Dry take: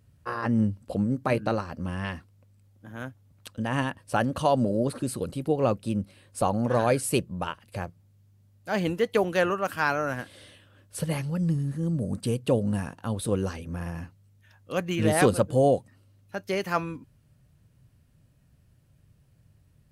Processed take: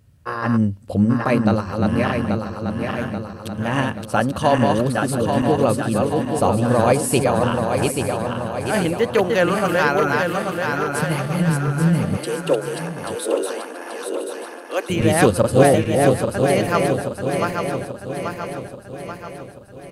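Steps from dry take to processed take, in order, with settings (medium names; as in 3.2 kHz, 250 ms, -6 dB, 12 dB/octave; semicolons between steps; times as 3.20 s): backward echo that repeats 417 ms, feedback 73%, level -3 dB; 12.17–14.90 s: steep high-pass 300 Hz 48 dB/octave; delay 983 ms -14 dB; trim +5.5 dB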